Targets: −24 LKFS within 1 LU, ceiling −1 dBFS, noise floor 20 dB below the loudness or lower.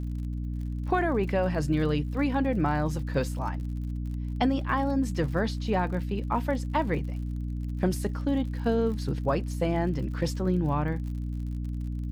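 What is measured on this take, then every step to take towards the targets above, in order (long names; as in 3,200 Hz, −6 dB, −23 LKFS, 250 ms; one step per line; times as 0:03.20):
crackle rate 57 per second; mains hum 60 Hz; hum harmonics up to 300 Hz; level of the hum −29 dBFS; integrated loudness −29.0 LKFS; sample peak −13.5 dBFS; target loudness −24.0 LKFS
→ click removal
mains-hum notches 60/120/180/240/300 Hz
level +5 dB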